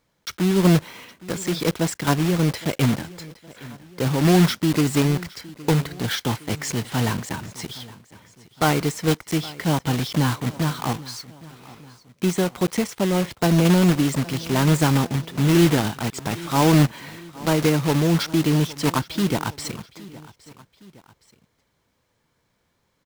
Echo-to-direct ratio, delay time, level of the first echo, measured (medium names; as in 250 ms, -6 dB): -19.0 dB, 815 ms, -20.0 dB